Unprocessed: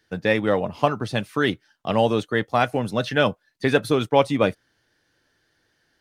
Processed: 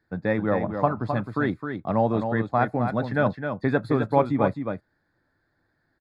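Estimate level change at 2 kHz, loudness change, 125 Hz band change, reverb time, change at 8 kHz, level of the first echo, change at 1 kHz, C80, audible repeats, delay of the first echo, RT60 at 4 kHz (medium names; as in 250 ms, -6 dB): -5.0 dB, -2.5 dB, +1.0 dB, no reverb, under -20 dB, -7.0 dB, -1.5 dB, no reverb, 1, 262 ms, no reverb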